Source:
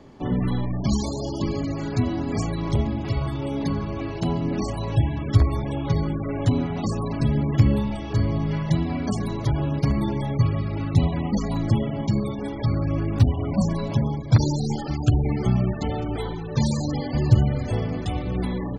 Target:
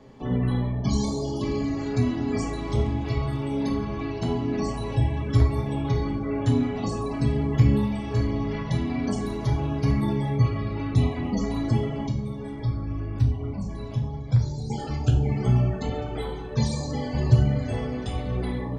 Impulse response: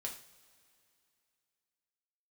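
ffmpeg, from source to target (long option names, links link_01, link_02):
-filter_complex "[0:a]asettb=1/sr,asplit=3[link_01][link_02][link_03];[link_01]atrim=end=12.084[link_04];[link_02]atrim=start=12.08:end=14.7,asetpts=PTS-STARTPTS,afade=type=in:duration=0.004:curve=qsin,afade=type=out:start_time=2.616:duration=0.004:curve=qsin,acrossover=split=140[link_05][link_06];[link_06]acompressor=threshold=-36dB:ratio=3[link_07];[link_05][link_07]amix=inputs=2:normalize=0[link_08];[link_03]atrim=start=14.696[link_09];[link_04][link_08]acrossfade=duration=0.004:curve1=hsin:curve2=qsin[link_10];[link_10][link_09]acrossfade=duration=0.004:curve1=qsin:curve2=hsin[link_11];[1:a]atrim=start_sample=2205[link_12];[link_11][link_12]afir=irnorm=-1:irlink=0"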